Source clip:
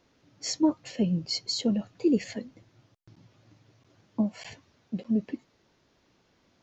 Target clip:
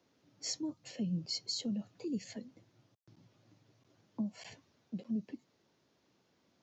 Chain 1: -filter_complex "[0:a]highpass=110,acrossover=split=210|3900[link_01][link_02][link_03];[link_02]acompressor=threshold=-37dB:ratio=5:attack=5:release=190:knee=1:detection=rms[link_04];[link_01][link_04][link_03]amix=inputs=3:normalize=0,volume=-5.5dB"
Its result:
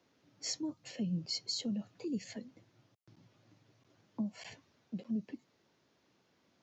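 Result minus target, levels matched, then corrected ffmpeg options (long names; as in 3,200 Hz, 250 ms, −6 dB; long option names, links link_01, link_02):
2,000 Hz band +2.5 dB
-filter_complex "[0:a]highpass=110,acrossover=split=210|3900[link_01][link_02][link_03];[link_02]acompressor=threshold=-37dB:ratio=5:attack=5:release=190:knee=1:detection=rms,equalizer=frequency=2100:width_type=o:width=2.3:gain=-3[link_04];[link_01][link_04][link_03]amix=inputs=3:normalize=0,volume=-5.5dB"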